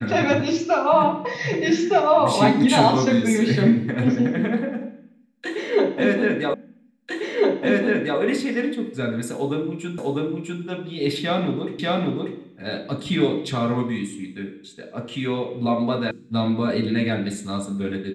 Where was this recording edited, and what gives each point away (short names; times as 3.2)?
6.54 repeat of the last 1.65 s
9.98 repeat of the last 0.65 s
11.79 repeat of the last 0.59 s
16.11 sound cut off